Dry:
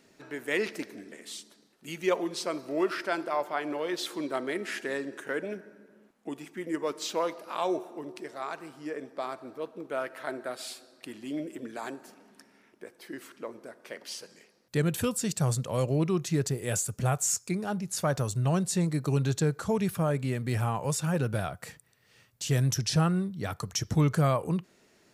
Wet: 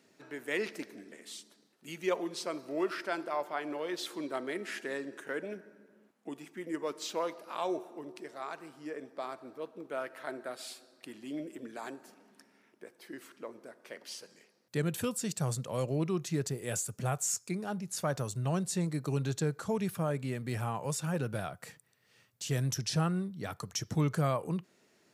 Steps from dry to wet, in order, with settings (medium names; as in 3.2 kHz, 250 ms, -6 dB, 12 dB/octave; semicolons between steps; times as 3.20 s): high-pass 110 Hz; trim -4.5 dB